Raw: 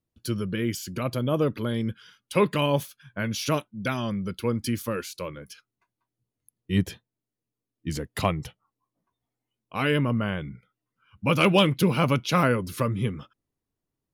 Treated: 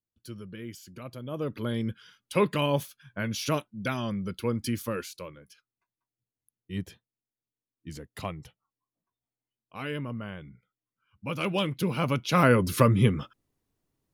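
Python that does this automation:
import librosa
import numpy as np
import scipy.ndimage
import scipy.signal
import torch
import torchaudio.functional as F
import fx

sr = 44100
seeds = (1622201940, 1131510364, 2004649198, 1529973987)

y = fx.gain(x, sr, db=fx.line((1.23, -13.0), (1.67, -2.5), (5.02, -2.5), (5.42, -10.5), (11.35, -10.5), (12.27, -3.0), (12.62, 5.5)))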